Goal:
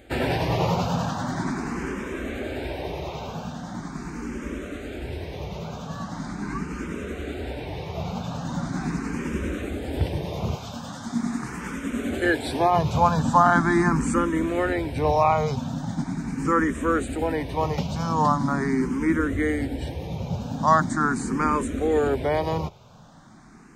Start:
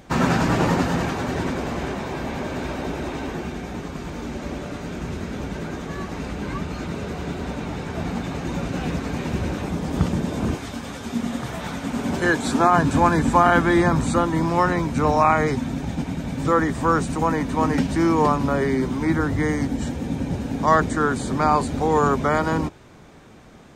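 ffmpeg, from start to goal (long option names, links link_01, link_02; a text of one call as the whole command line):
ffmpeg -i in.wav -filter_complex "[0:a]asplit=2[link_01][link_02];[link_02]afreqshift=0.41[link_03];[link_01][link_03]amix=inputs=2:normalize=1" out.wav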